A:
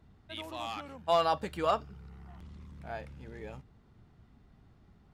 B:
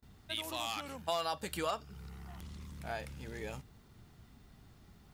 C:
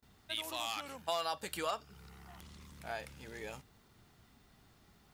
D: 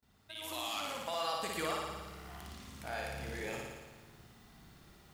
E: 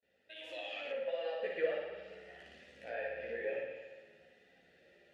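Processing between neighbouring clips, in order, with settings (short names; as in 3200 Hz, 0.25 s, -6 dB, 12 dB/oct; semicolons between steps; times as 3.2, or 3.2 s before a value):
gate with hold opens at -53 dBFS; pre-emphasis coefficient 0.8; compressor 3:1, threshold -50 dBFS, peak gain reduction 12 dB; gain +15 dB
low shelf 270 Hz -9 dB
limiter -30 dBFS, peak gain reduction 9 dB; AGC gain up to 9.5 dB; flutter echo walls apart 9.8 m, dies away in 1.3 s; gain -7 dB
chorus voices 4, 0.41 Hz, delay 14 ms, depth 2.9 ms; vowel filter e; treble ducked by the level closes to 2500 Hz, closed at -50 dBFS; gain +13.5 dB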